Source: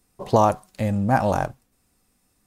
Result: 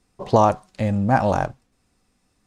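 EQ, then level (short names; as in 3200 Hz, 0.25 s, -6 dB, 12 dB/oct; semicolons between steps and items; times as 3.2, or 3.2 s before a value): LPF 6700 Hz 12 dB/oct; +1.5 dB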